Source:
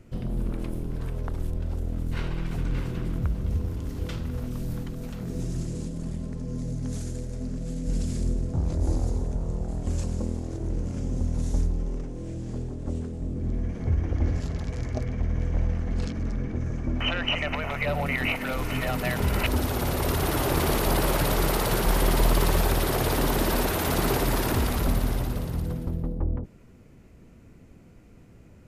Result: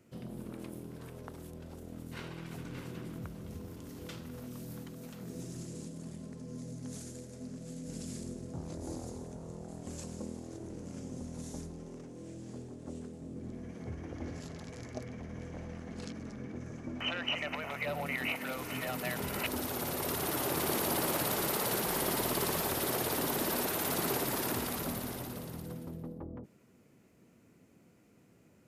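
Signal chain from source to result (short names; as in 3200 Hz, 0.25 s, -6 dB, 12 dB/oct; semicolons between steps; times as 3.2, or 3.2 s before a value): HPF 160 Hz 12 dB/oct; high shelf 6400 Hz +7.5 dB; 20.51–23.03 lo-fi delay 0.179 s, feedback 35%, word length 8-bit, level -9 dB; gain -8 dB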